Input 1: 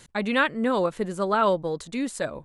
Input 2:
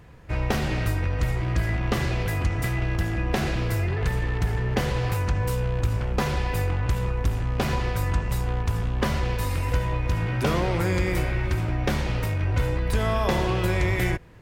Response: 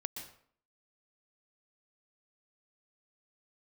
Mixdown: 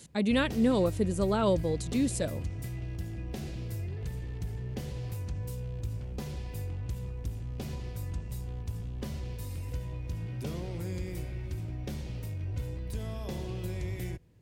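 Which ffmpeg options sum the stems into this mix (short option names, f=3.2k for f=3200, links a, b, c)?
-filter_complex "[0:a]volume=3dB[a];[1:a]volume=-9.5dB[b];[a][b]amix=inputs=2:normalize=0,highpass=53,equalizer=f=1.3k:w=0.55:g=-15"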